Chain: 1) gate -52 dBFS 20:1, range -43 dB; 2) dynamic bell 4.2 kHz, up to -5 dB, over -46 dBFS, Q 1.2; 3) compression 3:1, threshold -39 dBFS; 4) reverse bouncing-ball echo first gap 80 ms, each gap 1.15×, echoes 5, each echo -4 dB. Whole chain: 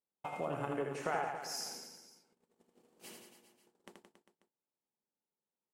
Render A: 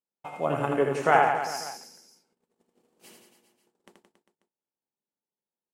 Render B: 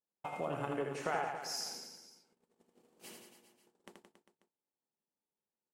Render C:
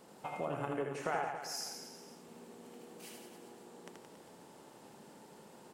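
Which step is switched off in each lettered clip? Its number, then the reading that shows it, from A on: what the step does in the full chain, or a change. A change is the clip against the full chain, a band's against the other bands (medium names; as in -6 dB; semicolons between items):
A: 3, mean gain reduction 7.5 dB; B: 2, 4 kHz band +2.0 dB; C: 1, loudness change -2.0 LU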